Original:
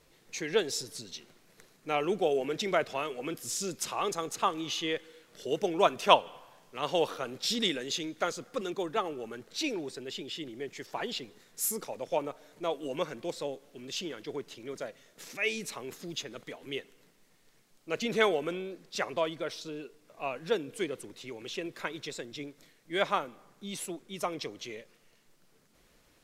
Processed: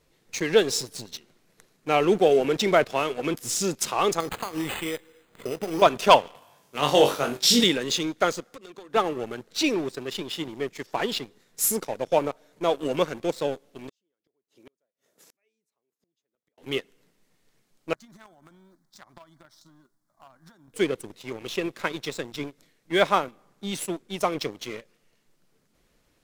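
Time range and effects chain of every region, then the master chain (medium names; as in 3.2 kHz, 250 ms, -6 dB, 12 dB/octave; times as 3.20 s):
4.20–5.82 s: compression 12:1, threshold -34 dBFS + doubling 25 ms -13 dB + careless resampling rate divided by 8×, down none, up hold
6.35–7.64 s: high-pass 45 Hz + treble shelf 6.4 kHz +8.5 dB + flutter echo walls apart 3.6 m, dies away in 0.27 s
8.40–8.94 s: bass shelf 150 Hz -10 dB + compression, threshold -44 dBFS
13.89–16.58 s: high-pass 470 Hz 6 dB/octave + peaking EQ 2.7 kHz -9.5 dB 2.6 oct + inverted gate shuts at -41 dBFS, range -35 dB
17.93–20.74 s: companding laws mixed up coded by A + compression 5:1, threshold -42 dBFS + static phaser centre 1.1 kHz, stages 4
whole clip: bass shelf 430 Hz +3.5 dB; waveshaping leveller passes 2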